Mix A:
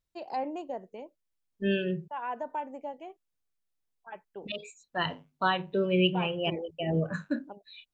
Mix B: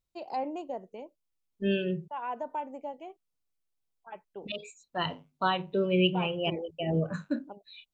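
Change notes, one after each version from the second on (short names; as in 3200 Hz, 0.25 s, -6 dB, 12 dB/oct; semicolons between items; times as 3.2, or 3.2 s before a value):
master: add bell 1700 Hz -7 dB 0.3 oct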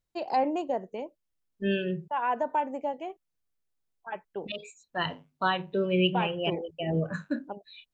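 first voice +7.0 dB; master: add bell 1700 Hz +7 dB 0.3 oct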